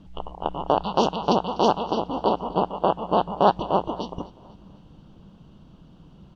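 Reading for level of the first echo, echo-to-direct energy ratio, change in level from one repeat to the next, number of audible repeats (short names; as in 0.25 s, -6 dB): -20.0 dB, -19.0 dB, -6.5 dB, 3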